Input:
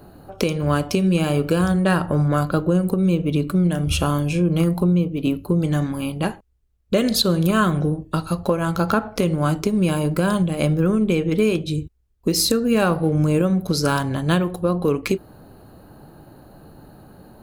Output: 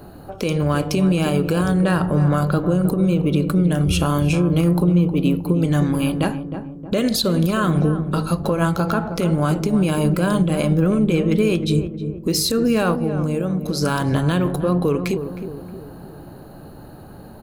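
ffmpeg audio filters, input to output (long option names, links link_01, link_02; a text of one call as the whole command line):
ffmpeg -i in.wav -filter_complex "[0:a]asplit=3[link_01][link_02][link_03];[link_01]afade=type=out:start_time=12.95:duration=0.02[link_04];[link_02]acompressor=threshold=-25dB:ratio=5,afade=type=in:start_time=12.95:duration=0.02,afade=type=out:start_time=13.81:duration=0.02[link_05];[link_03]afade=type=in:start_time=13.81:duration=0.02[link_06];[link_04][link_05][link_06]amix=inputs=3:normalize=0,alimiter=limit=-15dB:level=0:latency=1:release=108,asplit=2[link_07][link_08];[link_08]adelay=313,lowpass=frequency=870:poles=1,volume=-8dB,asplit=2[link_09][link_10];[link_10]adelay=313,lowpass=frequency=870:poles=1,volume=0.53,asplit=2[link_11][link_12];[link_12]adelay=313,lowpass=frequency=870:poles=1,volume=0.53,asplit=2[link_13][link_14];[link_14]adelay=313,lowpass=frequency=870:poles=1,volume=0.53,asplit=2[link_15][link_16];[link_16]adelay=313,lowpass=frequency=870:poles=1,volume=0.53,asplit=2[link_17][link_18];[link_18]adelay=313,lowpass=frequency=870:poles=1,volume=0.53[link_19];[link_09][link_11][link_13][link_15][link_17][link_19]amix=inputs=6:normalize=0[link_20];[link_07][link_20]amix=inputs=2:normalize=0,volume=4.5dB" out.wav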